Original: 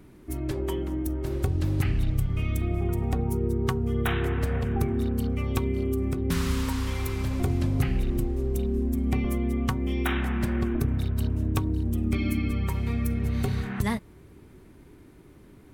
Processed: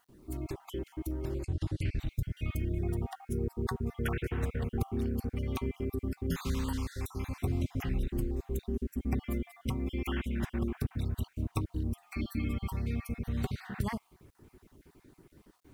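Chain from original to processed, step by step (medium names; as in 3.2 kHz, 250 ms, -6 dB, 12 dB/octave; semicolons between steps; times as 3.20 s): random holes in the spectrogram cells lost 39%; bit crusher 11-bit; 1.43–2.00 s: low-pass 10 kHz 24 dB/octave; trim -5.5 dB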